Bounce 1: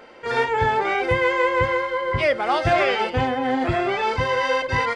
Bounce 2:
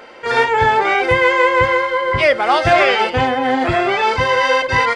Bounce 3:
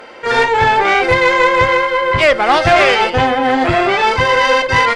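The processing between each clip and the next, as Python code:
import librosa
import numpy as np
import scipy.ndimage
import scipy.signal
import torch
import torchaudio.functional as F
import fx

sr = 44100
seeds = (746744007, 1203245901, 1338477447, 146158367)

y1 = fx.low_shelf(x, sr, hz=400.0, db=-6.0)
y1 = y1 * 10.0 ** (8.0 / 20.0)
y2 = fx.tube_stage(y1, sr, drive_db=9.0, bias=0.5)
y2 = y2 * 10.0 ** (5.5 / 20.0)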